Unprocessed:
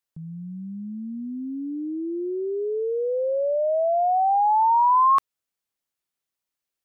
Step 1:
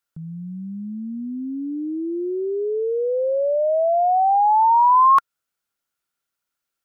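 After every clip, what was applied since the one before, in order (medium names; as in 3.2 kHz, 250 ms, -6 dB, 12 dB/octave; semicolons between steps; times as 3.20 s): peaking EQ 1.4 kHz +13 dB 0.2 oct; trim +3 dB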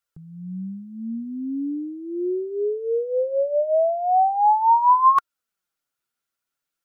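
flange 0.4 Hz, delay 1.4 ms, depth 8.1 ms, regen +16%; trim +1.5 dB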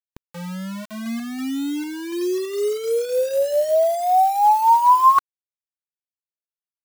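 word length cut 6-bit, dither none; trim +2 dB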